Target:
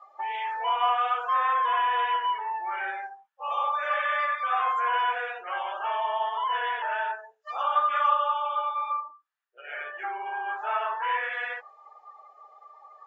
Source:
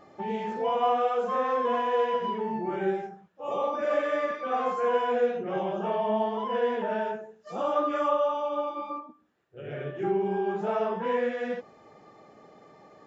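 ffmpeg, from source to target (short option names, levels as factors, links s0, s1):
-filter_complex "[0:a]afftdn=nr=23:nf=-49,highpass=f=970:w=0.5412,highpass=f=970:w=1.3066,asplit=2[s0][s1];[s1]acompressor=threshold=0.00631:ratio=6,volume=0.944[s2];[s0][s2]amix=inputs=2:normalize=0,volume=2"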